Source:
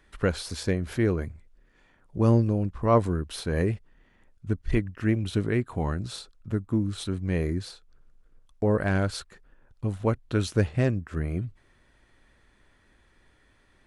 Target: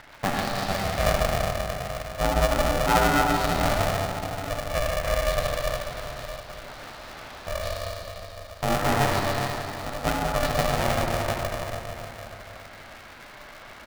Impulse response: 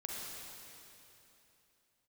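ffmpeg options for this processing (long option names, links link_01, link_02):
-filter_complex "[0:a]aeval=exprs='val(0)+0.5*0.0211*sgn(val(0))':channel_layout=same,agate=range=-19dB:threshold=-34dB:ratio=16:detection=peak,acompressor=mode=upward:threshold=-35dB:ratio=2.5,asettb=1/sr,asplit=3[link_01][link_02][link_03];[link_01]atrim=end=5.444[link_04];[link_02]atrim=start=5.44:end=7.47,asetpts=PTS-STARTPTS,afade=type=in:duration=0.004:curve=qsin,afade=type=out:start_time=2.026:duration=0.004:curve=qsin,aeval=exprs='(mod(79.4*val(0)+1,2)-1)/79.4':channel_layout=same[link_05];[link_03]atrim=start=7.466[link_06];[link_04][link_05]acrossfade=duration=0.004:curve1=hsin:curve2=qsin[link_07];[link_07][link_06]acrossfade=duration=0.004:curve1=qsin:curve2=hsin,highpass=frequency=280:width=0.5412,highpass=frequency=280:width=1.3066,equalizer=frequency=310:width_type=q:width=4:gain=6,equalizer=frequency=1100:width_type=q:width=4:gain=5,equalizer=frequency=3000:width_type=q:width=4:gain=-8,lowpass=frequency=4300:width=0.5412,lowpass=frequency=4300:width=1.3066,aecho=1:1:148|296|444|592|740|888:0.376|0.188|0.094|0.047|0.0235|0.0117[link_08];[1:a]atrim=start_sample=2205,asetrate=38808,aresample=44100[link_09];[link_08][link_09]afir=irnorm=-1:irlink=0,aeval=exprs='val(0)*sgn(sin(2*PI*290*n/s))':channel_layout=same,volume=1dB"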